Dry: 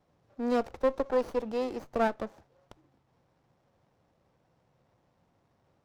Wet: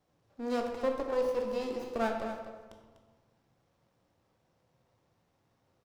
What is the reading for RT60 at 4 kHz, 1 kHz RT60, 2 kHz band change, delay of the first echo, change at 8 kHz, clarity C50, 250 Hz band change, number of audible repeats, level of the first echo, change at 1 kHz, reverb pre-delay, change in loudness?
0.80 s, 1.3 s, -2.0 dB, 0.247 s, n/a, 4.0 dB, -3.5 dB, 1, -10.5 dB, -3.0 dB, 15 ms, -2.5 dB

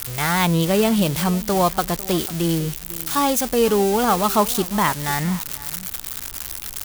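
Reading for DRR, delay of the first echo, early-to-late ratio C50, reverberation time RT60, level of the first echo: none, 0.499 s, none, none, -18.5 dB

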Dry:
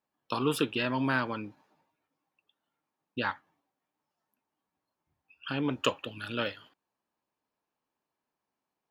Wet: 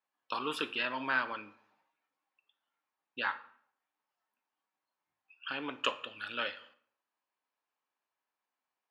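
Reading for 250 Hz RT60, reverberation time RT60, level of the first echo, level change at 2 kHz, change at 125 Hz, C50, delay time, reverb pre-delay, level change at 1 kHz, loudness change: 0.70 s, 0.60 s, none, 0.0 dB, -20.5 dB, 15.5 dB, none, 4 ms, -2.0 dB, -4.0 dB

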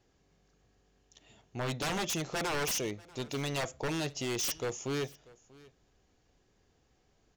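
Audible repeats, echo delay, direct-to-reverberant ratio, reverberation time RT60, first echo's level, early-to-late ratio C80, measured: 1, 0.639 s, none, none, -23.0 dB, none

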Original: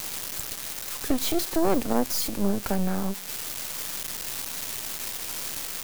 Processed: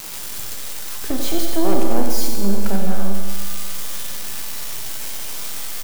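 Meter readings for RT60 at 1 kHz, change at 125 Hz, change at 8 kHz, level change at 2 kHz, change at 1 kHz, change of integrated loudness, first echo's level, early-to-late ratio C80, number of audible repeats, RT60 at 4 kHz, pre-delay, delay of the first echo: 1.9 s, +5.5 dB, +3.0 dB, +2.5 dB, +3.0 dB, +3.0 dB, -8.5 dB, 3.0 dB, 1, 1.9 s, 9 ms, 93 ms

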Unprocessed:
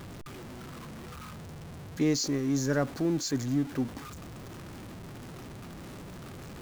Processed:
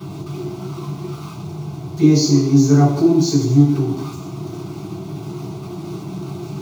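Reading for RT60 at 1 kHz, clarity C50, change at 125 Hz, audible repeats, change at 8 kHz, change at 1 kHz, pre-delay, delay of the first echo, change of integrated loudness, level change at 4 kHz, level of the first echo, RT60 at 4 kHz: 0.80 s, 5.0 dB, +18.5 dB, none, +9.0 dB, +13.5 dB, 3 ms, none, +14.5 dB, +10.0 dB, none, 0.80 s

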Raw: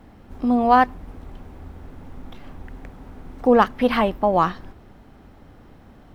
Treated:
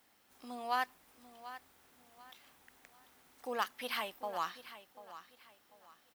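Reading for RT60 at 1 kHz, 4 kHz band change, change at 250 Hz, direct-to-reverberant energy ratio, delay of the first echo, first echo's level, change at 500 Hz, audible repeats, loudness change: none, -7.5 dB, -30.0 dB, none, 0.741 s, -14.5 dB, -23.0 dB, 3, -20.5 dB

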